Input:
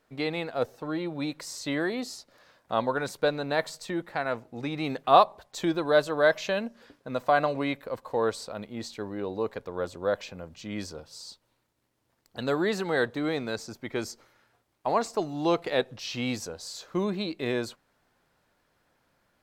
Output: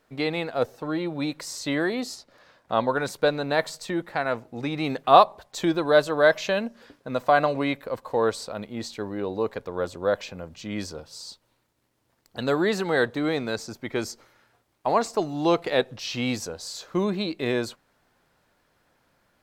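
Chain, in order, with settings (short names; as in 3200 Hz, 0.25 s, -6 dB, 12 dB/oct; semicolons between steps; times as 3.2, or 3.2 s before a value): 2.14–2.88 high shelf 5800 Hz -> 9600 Hz -8 dB; gain +3.5 dB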